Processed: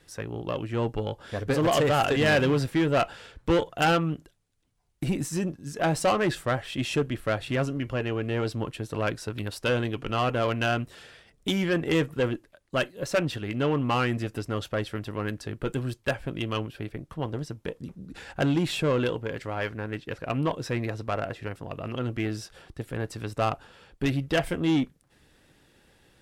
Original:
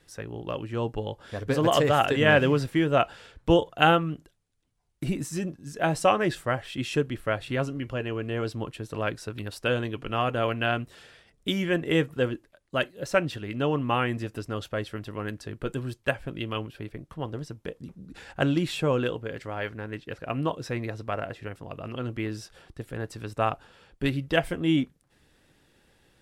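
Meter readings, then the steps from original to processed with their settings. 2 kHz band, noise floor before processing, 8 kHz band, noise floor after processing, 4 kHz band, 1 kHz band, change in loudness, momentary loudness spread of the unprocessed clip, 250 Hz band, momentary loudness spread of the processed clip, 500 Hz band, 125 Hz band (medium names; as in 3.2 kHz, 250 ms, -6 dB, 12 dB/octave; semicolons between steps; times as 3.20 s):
-1.0 dB, -66 dBFS, +3.0 dB, -64 dBFS, 0.0 dB, -1.0 dB, -0.5 dB, 15 LU, +0.5 dB, 12 LU, -0.5 dB, +1.0 dB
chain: saturation -19.5 dBFS, distortion -11 dB; Chebyshev shaper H 4 -24 dB, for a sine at -19.5 dBFS; trim +2.5 dB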